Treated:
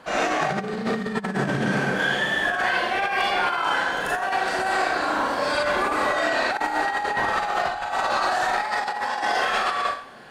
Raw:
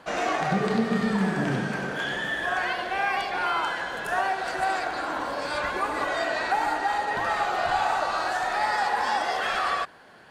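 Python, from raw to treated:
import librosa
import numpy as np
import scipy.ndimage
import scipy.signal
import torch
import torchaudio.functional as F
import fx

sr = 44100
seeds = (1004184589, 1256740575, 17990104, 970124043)

y = fx.rev_schroeder(x, sr, rt60_s=0.48, comb_ms=29, drr_db=-2.5)
y = fx.over_compress(y, sr, threshold_db=-23.0, ratio=-0.5)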